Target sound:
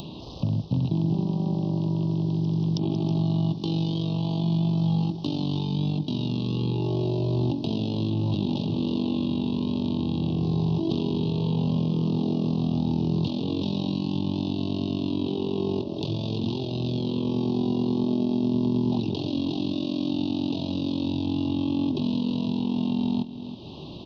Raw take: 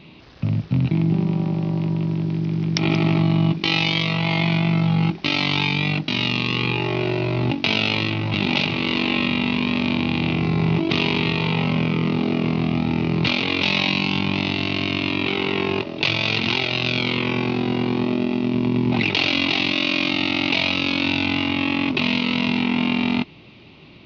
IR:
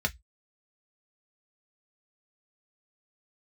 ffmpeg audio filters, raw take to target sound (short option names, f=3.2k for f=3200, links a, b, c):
-filter_complex "[0:a]acrossover=split=460|3900[a][b][c];[a]acompressor=threshold=-22dB:ratio=4[d];[b]acompressor=threshold=-38dB:ratio=4[e];[c]acompressor=threshold=-46dB:ratio=4[f];[d][e][f]amix=inputs=3:normalize=0,asplit=2[g][h];[h]aecho=0:1:321:0.211[i];[g][i]amix=inputs=2:normalize=0,acompressor=mode=upward:threshold=-29dB:ratio=2.5,asuperstop=centerf=1800:order=8:qfactor=0.86"